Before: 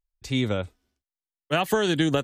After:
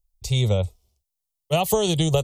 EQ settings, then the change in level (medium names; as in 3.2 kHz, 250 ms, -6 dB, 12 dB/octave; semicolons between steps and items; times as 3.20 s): bass shelf 330 Hz +11.5 dB; treble shelf 4.4 kHz +11 dB; static phaser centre 660 Hz, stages 4; +1.5 dB